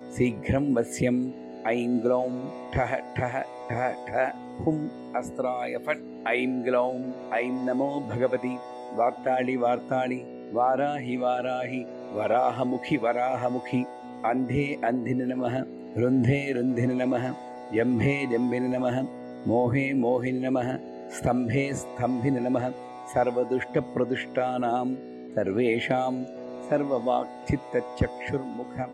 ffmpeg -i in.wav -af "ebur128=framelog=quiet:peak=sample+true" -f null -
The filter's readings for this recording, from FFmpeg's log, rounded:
Integrated loudness:
  I:         -27.5 LUFS
  Threshold: -37.6 LUFS
Loudness range:
  LRA:         2.4 LU
  Threshold: -47.5 LUFS
  LRA low:   -28.7 LUFS
  LRA high:  -26.3 LUFS
Sample peak:
  Peak:      -10.5 dBFS
True peak:
  Peak:      -10.5 dBFS